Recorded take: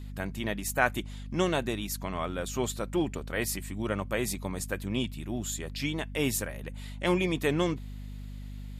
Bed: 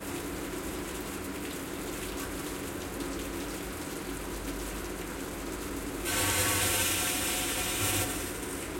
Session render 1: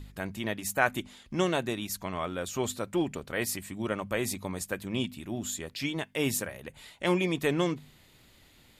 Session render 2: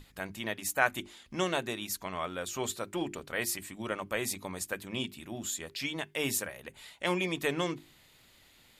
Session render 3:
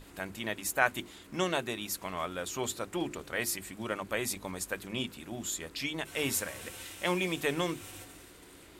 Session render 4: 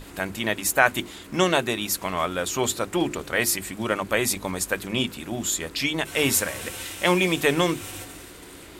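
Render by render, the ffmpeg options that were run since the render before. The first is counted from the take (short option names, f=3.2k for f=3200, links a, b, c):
-af "bandreject=f=50:t=h:w=4,bandreject=f=100:t=h:w=4,bandreject=f=150:t=h:w=4,bandreject=f=200:t=h:w=4,bandreject=f=250:t=h:w=4"
-af "lowshelf=f=490:g=-6.5,bandreject=f=50:t=h:w=6,bandreject=f=100:t=h:w=6,bandreject=f=150:t=h:w=6,bandreject=f=200:t=h:w=6,bandreject=f=250:t=h:w=6,bandreject=f=300:t=h:w=6,bandreject=f=350:t=h:w=6,bandreject=f=400:t=h:w=6"
-filter_complex "[1:a]volume=-18dB[a];[0:a][a]amix=inputs=2:normalize=0"
-af "volume=10dB,alimiter=limit=-2dB:level=0:latency=1"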